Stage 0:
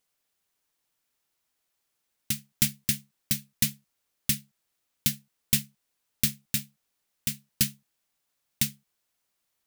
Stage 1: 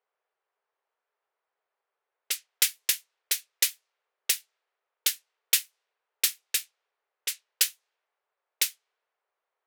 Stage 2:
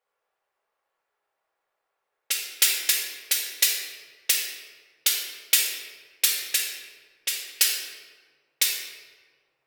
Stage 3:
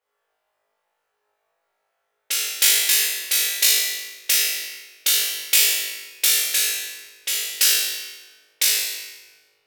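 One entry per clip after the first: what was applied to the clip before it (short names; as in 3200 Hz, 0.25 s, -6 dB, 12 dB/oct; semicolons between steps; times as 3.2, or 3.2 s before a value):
elliptic high-pass 410 Hz, stop band 50 dB; low-pass opened by the level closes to 1400 Hz, open at -28 dBFS; gain +5 dB
shoebox room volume 1400 m³, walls mixed, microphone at 2.3 m; gain +1.5 dB
flutter echo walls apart 3.3 m, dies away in 0.92 s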